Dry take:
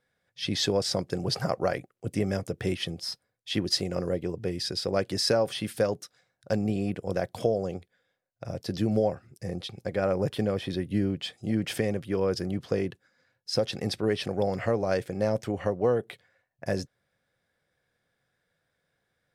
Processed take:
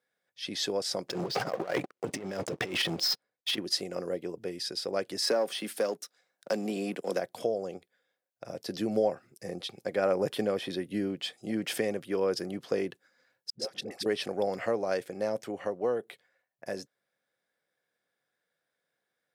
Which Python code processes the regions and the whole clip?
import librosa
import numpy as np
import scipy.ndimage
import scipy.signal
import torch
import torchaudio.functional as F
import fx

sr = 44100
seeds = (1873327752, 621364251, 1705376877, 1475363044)

y = fx.chain(x, sr, fx.over_compress(threshold_db=-34.0, ratio=-0.5),
    fx.lowpass(hz=5400.0, slope=12),
    fx.leveller(passes=3), at=(1.08, 3.58))
y = fx.chain(y, sr, fx.highpass(hz=170.0, slope=24),
    fx.leveller(passes=1),
    fx.band_squash(depth_pct=40), at=(5.22, 7.19))
y = fx.chain(y, sr, fx.level_steps(step_db=17),
    fx.dispersion(late='highs', ms=96.0, hz=580.0), at=(13.5, 14.06))
y = scipy.signal.sosfilt(scipy.signal.butter(2, 260.0, 'highpass', fs=sr, output='sos'), y)
y = fx.high_shelf(y, sr, hz=11000.0, db=5.5)
y = fx.rider(y, sr, range_db=10, speed_s=2.0)
y = y * 10.0 ** (-3.0 / 20.0)